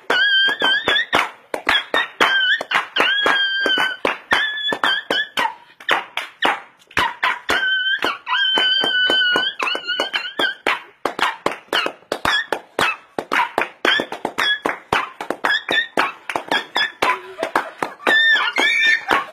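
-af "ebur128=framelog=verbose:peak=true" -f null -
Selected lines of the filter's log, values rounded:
Integrated loudness:
  I:         -17.9 LUFS
  Threshold: -28.0 LUFS
Loudness range:
  LRA:         3.8 LU
  Threshold: -38.5 LUFS
  LRA low:   -20.5 LUFS
  LRA high:  -16.7 LUFS
True peak:
  Peak:       -2.6 dBFS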